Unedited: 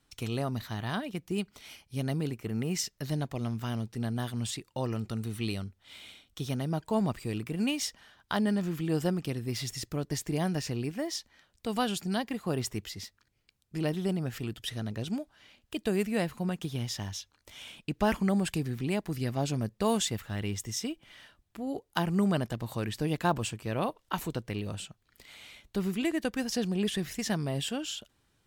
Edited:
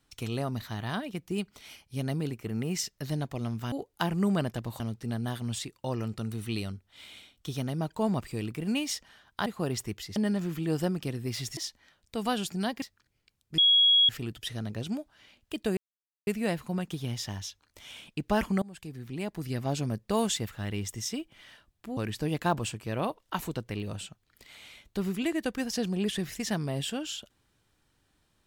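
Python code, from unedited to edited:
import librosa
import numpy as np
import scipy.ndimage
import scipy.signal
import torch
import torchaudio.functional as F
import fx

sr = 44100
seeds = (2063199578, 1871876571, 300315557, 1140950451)

y = fx.edit(x, sr, fx.cut(start_s=9.79, length_s=1.29),
    fx.move(start_s=12.33, length_s=0.7, to_s=8.38),
    fx.bleep(start_s=13.79, length_s=0.51, hz=3320.0, db=-17.5),
    fx.insert_silence(at_s=15.98, length_s=0.5),
    fx.fade_in_from(start_s=18.33, length_s=1.02, floor_db=-23.5),
    fx.move(start_s=21.68, length_s=1.08, to_s=3.72), tone=tone)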